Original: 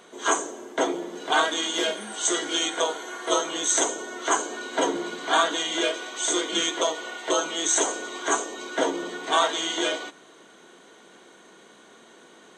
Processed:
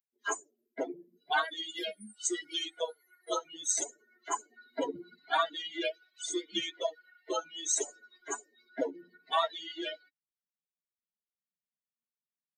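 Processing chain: per-bin expansion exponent 3; gain -2 dB

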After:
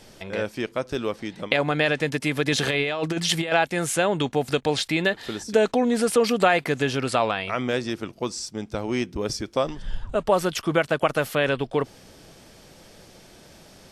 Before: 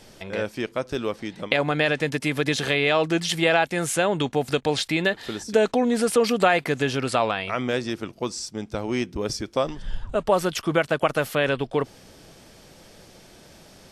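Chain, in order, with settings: 2.52–3.52 negative-ratio compressor -23 dBFS, ratio -0.5

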